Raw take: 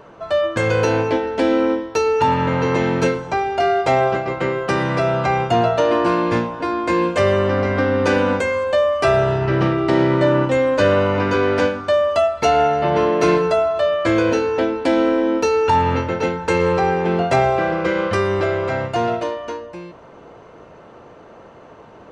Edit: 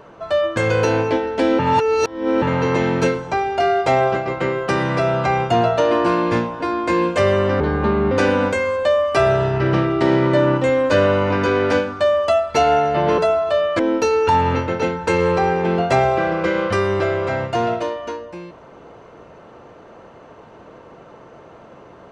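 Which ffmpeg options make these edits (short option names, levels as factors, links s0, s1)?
-filter_complex "[0:a]asplit=7[s0][s1][s2][s3][s4][s5][s6];[s0]atrim=end=1.592[s7];[s1]atrim=start=1.588:end=2.422,asetpts=PTS-STARTPTS,areverse[s8];[s2]atrim=start=2.418:end=7.604[s9];[s3]atrim=start=7.6:end=7.99,asetpts=PTS-STARTPTS,asetrate=33516,aresample=44100,atrim=end_sample=22630,asetpts=PTS-STARTPTS[s10];[s4]atrim=start=7.986:end=13.062[s11];[s5]atrim=start=13.468:end=14.082[s12];[s6]atrim=start=15.198[s13];[s7][s8]acrossfade=d=0.004:c1=hsin:c2=hsin[s14];[s14][s9]acrossfade=d=0.004:c1=hsin:c2=hsin[s15];[s15][s10]acrossfade=d=0.004:c1=hsin:c2=hsin[s16];[s16][s11]acrossfade=d=0.004:c1=hsin:c2=hsin[s17];[s17][s12]acrossfade=d=0.004:c1=hsin:c2=hsin[s18];[s18][s13]acrossfade=d=0.004:c1=hsin:c2=hsin"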